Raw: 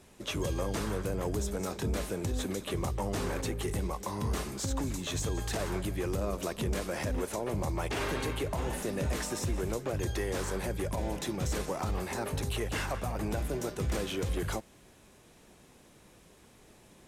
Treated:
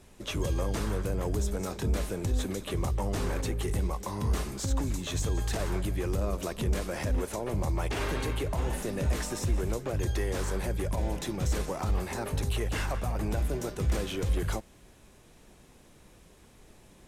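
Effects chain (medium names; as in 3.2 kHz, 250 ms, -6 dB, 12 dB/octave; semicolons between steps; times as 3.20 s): bass shelf 61 Hz +11.5 dB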